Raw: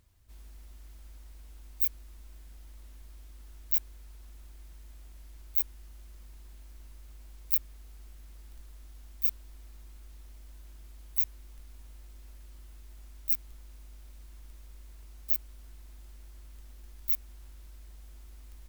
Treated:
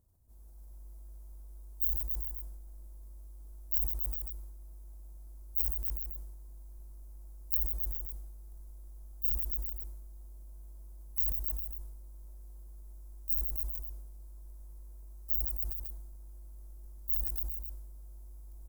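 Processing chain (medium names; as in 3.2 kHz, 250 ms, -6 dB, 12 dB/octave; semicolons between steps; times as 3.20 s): FFT filter 760 Hz 0 dB, 2.5 kHz -21 dB, 11 kHz +1 dB; multi-tap echo 58/154/278/403/437/543 ms -12/-6.5/-4.5/-12.5/-10.5/-12.5 dB; decay stretcher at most 35 dB/s; trim -6 dB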